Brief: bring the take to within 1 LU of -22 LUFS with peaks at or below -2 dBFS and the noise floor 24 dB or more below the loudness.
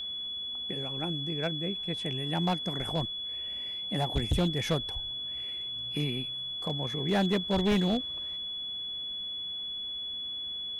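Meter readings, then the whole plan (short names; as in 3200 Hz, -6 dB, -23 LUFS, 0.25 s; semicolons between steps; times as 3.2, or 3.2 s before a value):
clipped 1.0%; flat tops at -21.5 dBFS; steady tone 3400 Hz; tone level -34 dBFS; loudness -31.0 LUFS; peak -21.5 dBFS; loudness target -22.0 LUFS
-> clip repair -21.5 dBFS; notch 3400 Hz, Q 30; gain +9 dB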